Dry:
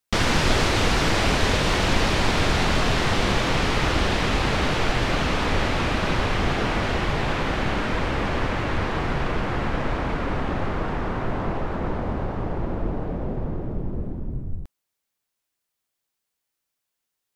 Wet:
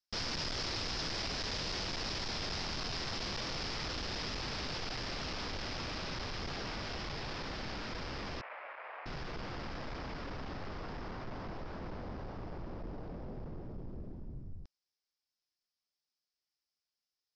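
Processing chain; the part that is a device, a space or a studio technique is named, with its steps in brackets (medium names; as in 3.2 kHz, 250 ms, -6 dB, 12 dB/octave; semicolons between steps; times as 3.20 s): overdriven synthesiser ladder filter (saturation -23.5 dBFS, distortion -9 dB; four-pole ladder low-pass 5.5 kHz, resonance 75%); 8.41–9.06 s: Chebyshev band-pass 580–2400 Hz, order 3; trim -1.5 dB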